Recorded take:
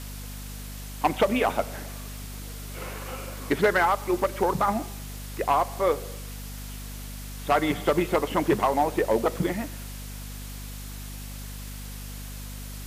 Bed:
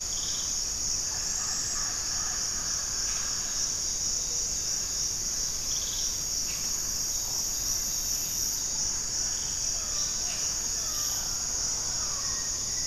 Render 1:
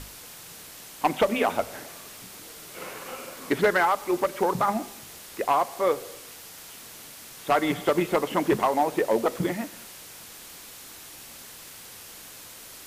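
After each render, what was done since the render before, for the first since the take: hum notches 50/100/150/200/250 Hz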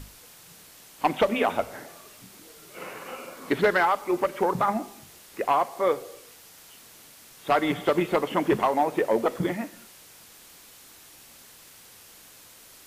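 noise print and reduce 6 dB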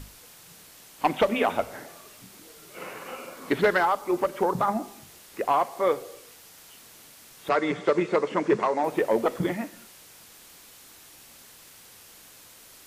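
3.78–5.54 s: dynamic bell 2.2 kHz, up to -6 dB, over -41 dBFS, Q 1.6; 7.49–8.84 s: cabinet simulation 150–7600 Hz, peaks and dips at 260 Hz -5 dB, 450 Hz +4 dB, 760 Hz -6 dB, 3.1 kHz -8 dB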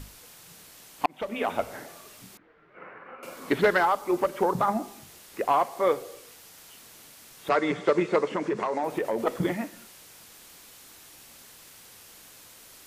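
1.06–1.70 s: fade in; 2.37–3.23 s: four-pole ladder low-pass 2.1 kHz, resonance 40%; 8.27–9.27 s: compression, threshold -23 dBFS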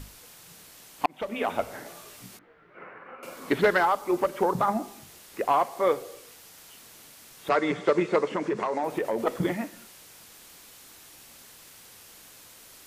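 1.84–2.84 s: doubling 17 ms -3 dB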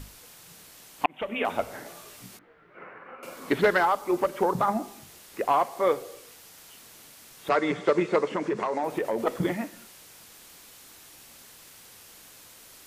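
1.04–1.45 s: resonant high shelf 3.7 kHz -7.5 dB, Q 3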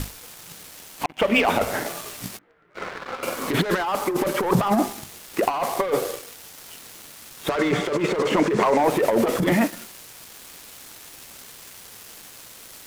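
waveshaping leveller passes 3; compressor with a negative ratio -19 dBFS, ratio -0.5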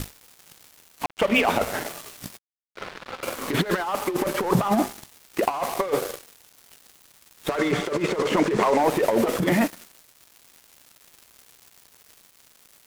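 crossover distortion -34.5 dBFS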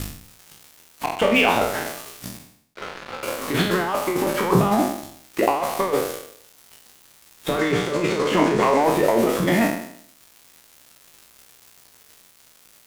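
spectral sustain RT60 0.66 s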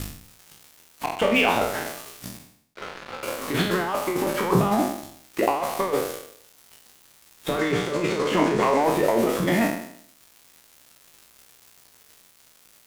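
trim -2.5 dB

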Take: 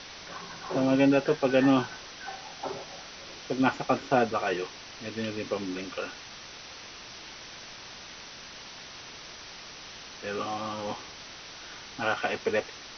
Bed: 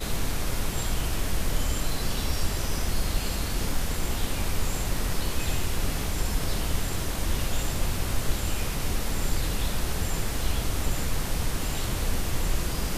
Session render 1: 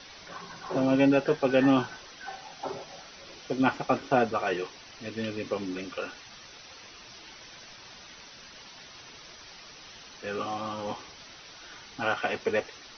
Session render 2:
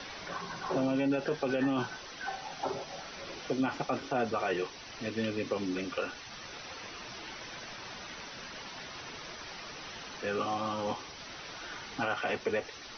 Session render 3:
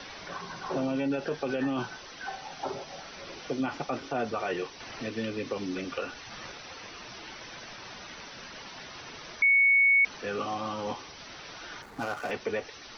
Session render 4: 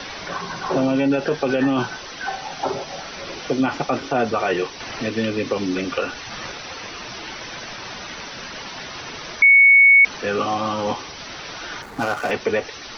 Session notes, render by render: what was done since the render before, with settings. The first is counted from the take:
noise reduction 8 dB, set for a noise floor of -45 dBFS
peak limiter -20.5 dBFS, peak gain reduction 11 dB; three bands compressed up and down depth 40%
4.80–6.52 s: three bands compressed up and down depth 40%; 9.42–10.05 s: bleep 2.22 kHz -18 dBFS; 11.82–12.31 s: median filter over 15 samples
trim +10.5 dB

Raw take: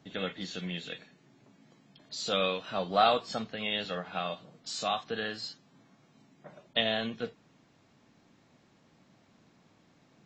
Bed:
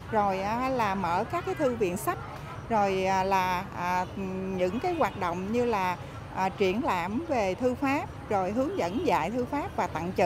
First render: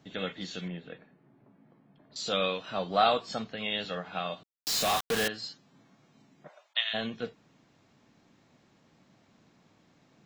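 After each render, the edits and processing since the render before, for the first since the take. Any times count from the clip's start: 0.68–2.16 s: low-pass 1.4 kHz; 4.43–5.28 s: companded quantiser 2-bit; 6.47–6.93 s: high-pass 490 Hz -> 1.4 kHz 24 dB/octave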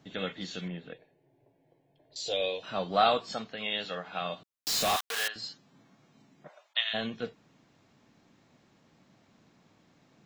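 0.93–2.63 s: static phaser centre 520 Hz, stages 4; 3.34–4.22 s: bass shelf 220 Hz -8 dB; 4.96–5.36 s: high-pass 950 Hz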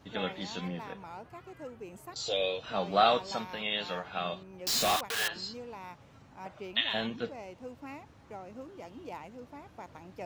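add bed -17.5 dB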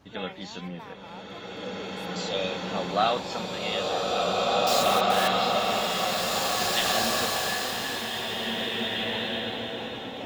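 swelling reverb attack 2310 ms, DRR -6.5 dB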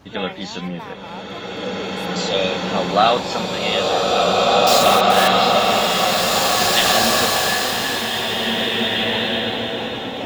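trim +9.5 dB; peak limiter -3 dBFS, peak gain reduction 2 dB

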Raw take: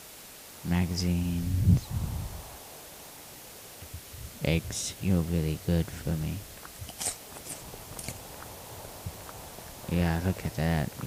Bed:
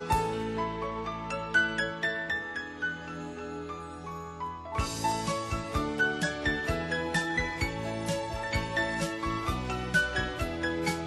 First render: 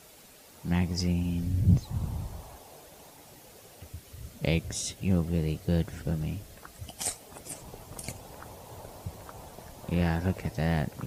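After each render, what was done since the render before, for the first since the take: noise reduction 8 dB, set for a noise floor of -47 dBFS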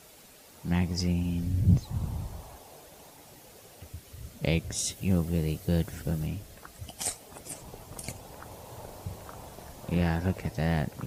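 4.78–6.27 s: treble shelf 8 kHz +8 dB; 8.47–9.98 s: doubling 42 ms -6 dB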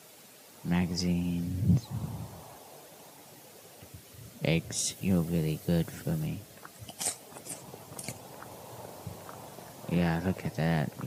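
high-pass 110 Hz 24 dB/octave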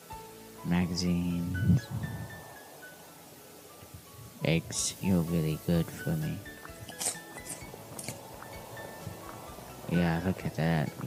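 add bed -18 dB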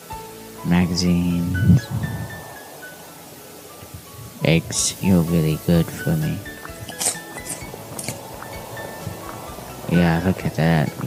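trim +11 dB

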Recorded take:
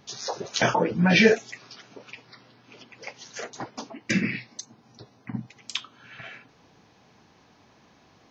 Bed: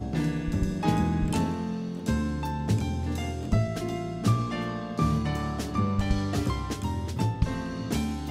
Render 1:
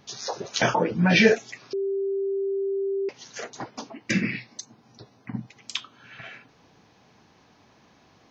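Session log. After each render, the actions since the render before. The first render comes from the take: 1.73–3.09 s: bleep 392 Hz -23.5 dBFS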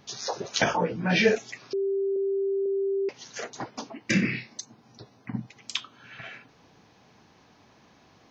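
0.64–1.36 s: detune thickener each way 25 cents; 2.16–2.66 s: low-pass 1.6 kHz 24 dB/octave; 4.04–4.53 s: flutter echo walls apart 5.3 m, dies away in 0.22 s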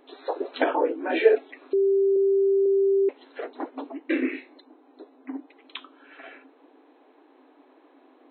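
tilt EQ -4.5 dB/octave; FFT band-pass 250–4200 Hz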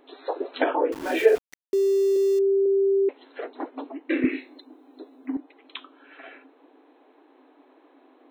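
0.92–2.39 s: small samples zeroed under -33.5 dBFS; 4.24–5.37 s: tone controls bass +13 dB, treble +11 dB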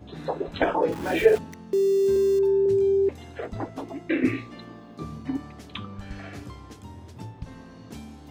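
add bed -12.5 dB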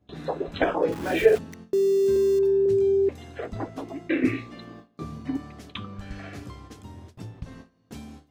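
band-stop 890 Hz, Q 13; gate with hold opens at -34 dBFS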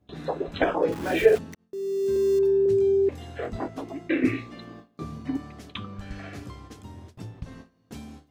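1.55–2.36 s: fade in; 3.10–3.68 s: doubling 23 ms -3.5 dB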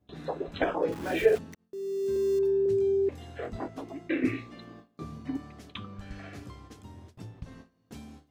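trim -4.5 dB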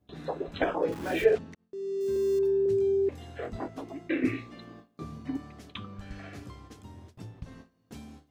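1.24–2.01 s: distance through air 80 m

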